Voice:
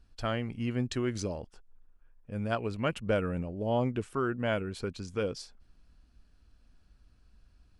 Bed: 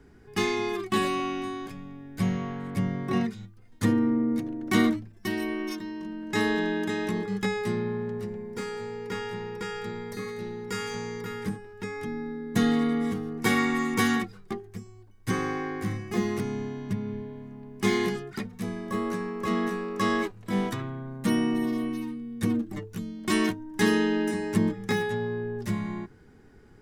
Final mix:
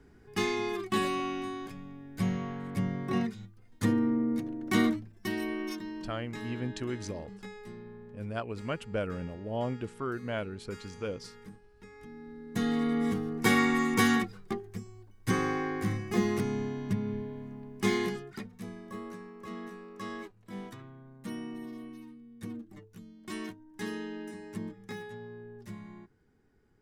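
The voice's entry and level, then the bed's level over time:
5.85 s, −4.0 dB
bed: 0:06.00 −3.5 dB
0:06.40 −17 dB
0:11.88 −17 dB
0:13.10 −0.5 dB
0:17.53 −0.5 dB
0:19.32 −14.5 dB

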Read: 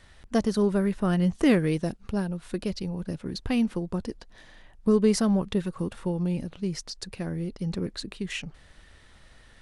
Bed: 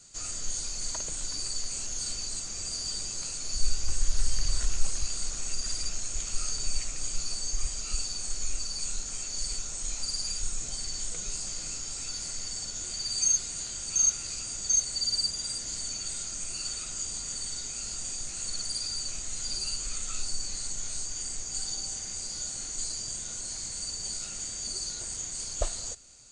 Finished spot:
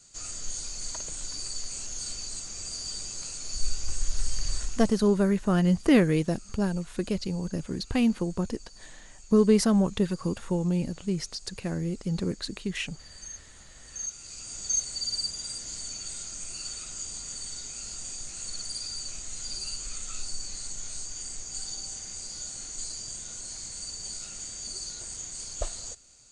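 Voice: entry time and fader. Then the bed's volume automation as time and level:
4.45 s, +1.0 dB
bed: 0:04.55 −2 dB
0:05.18 −18 dB
0:13.67 −18 dB
0:14.58 −2.5 dB

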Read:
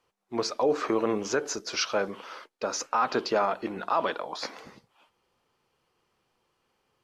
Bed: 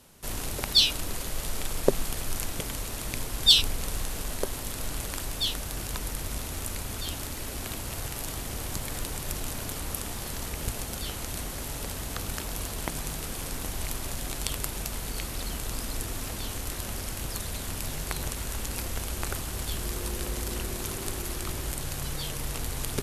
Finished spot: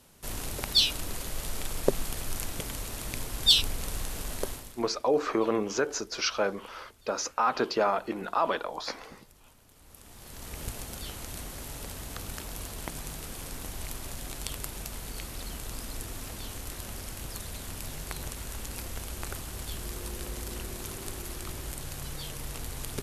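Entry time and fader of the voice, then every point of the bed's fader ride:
4.45 s, −0.5 dB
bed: 0:04.50 −2.5 dB
0:04.94 −25.5 dB
0:09.67 −25.5 dB
0:10.56 −5 dB

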